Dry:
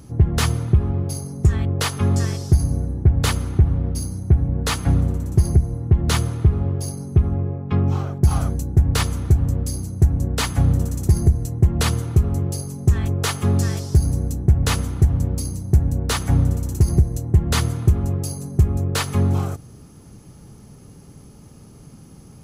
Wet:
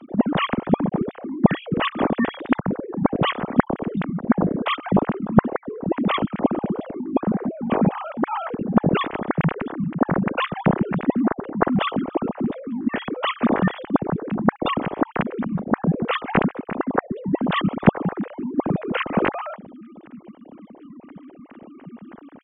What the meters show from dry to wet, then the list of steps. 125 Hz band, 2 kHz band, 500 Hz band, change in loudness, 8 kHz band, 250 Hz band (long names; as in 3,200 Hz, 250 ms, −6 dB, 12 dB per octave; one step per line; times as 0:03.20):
−10.5 dB, +4.0 dB, +6.5 dB, −2.5 dB, below −40 dB, +5.5 dB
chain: three sine waves on the formant tracks
level −4 dB